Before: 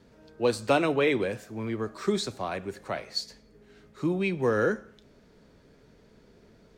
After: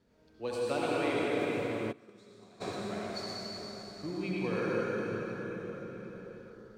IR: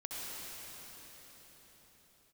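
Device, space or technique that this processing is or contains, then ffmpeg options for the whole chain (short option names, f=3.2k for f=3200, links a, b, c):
cathedral: -filter_complex "[1:a]atrim=start_sample=2205[a];[0:a][a]afir=irnorm=-1:irlink=0,asplit=3[b][c][d];[b]afade=t=out:st=1.91:d=0.02[e];[c]agate=range=-21dB:threshold=-22dB:ratio=16:detection=peak,afade=t=in:st=1.91:d=0.02,afade=t=out:st=2.6:d=0.02[f];[d]afade=t=in:st=2.6:d=0.02[g];[e][f][g]amix=inputs=3:normalize=0,volume=-7dB"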